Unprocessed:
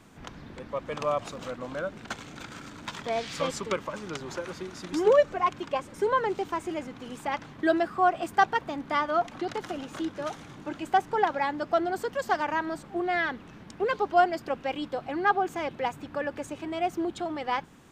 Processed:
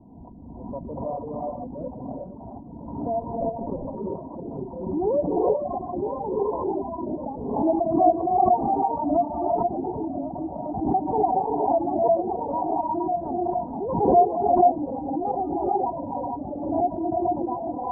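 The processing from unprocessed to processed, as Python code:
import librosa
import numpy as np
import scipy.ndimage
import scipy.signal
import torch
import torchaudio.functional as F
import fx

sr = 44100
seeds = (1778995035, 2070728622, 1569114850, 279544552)

p1 = fx.lower_of_two(x, sr, delay_ms=0.44, at=(3.22, 3.69))
p2 = fx.rev_gated(p1, sr, seeds[0], gate_ms=480, shape='rising', drr_db=-4.5)
p3 = fx.dereverb_blind(p2, sr, rt60_s=1.0)
p4 = scipy.signal.sosfilt(scipy.signal.cheby1(6, 9, 990.0, 'lowpass', fs=sr, output='sos'), p3)
p5 = fx.peak_eq(p4, sr, hz=70.0, db=13.5, octaves=0.72)
p6 = p5 + fx.echo_feedback(p5, sr, ms=1044, feedback_pct=59, wet_db=-19.5, dry=0)
p7 = fx.pre_swell(p6, sr, db_per_s=49.0)
y = p7 * 10.0 ** (4.0 / 20.0)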